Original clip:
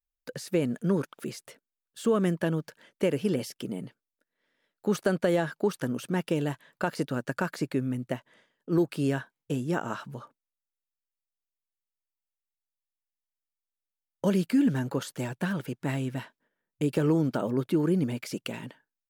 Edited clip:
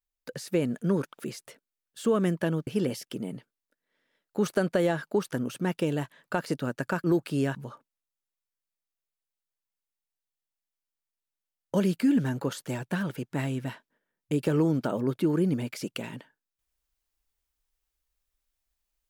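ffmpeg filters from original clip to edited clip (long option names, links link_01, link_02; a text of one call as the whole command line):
ffmpeg -i in.wav -filter_complex "[0:a]asplit=4[link_01][link_02][link_03][link_04];[link_01]atrim=end=2.672[link_05];[link_02]atrim=start=3.158:end=7.532[link_06];[link_03]atrim=start=8.698:end=9.212[link_07];[link_04]atrim=start=10.048[link_08];[link_05][link_06]acrossfade=duration=0.004:curve1=hsin:curve2=hsin[link_09];[link_09][link_07]acrossfade=duration=0.004:curve1=hsin:curve2=hsin[link_10];[link_10][link_08]acrossfade=duration=0.004:curve1=hsin:curve2=hsin" out.wav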